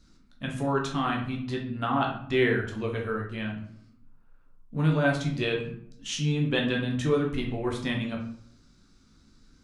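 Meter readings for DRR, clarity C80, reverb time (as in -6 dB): -1.0 dB, 10.5 dB, 0.65 s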